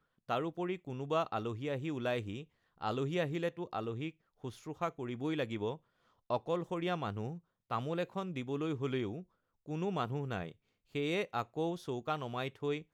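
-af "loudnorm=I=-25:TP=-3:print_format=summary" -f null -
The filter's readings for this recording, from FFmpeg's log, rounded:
Input Integrated:    -37.7 LUFS
Input True Peak:     -20.2 dBTP
Input LRA:             1.0 LU
Input Threshold:     -48.0 LUFS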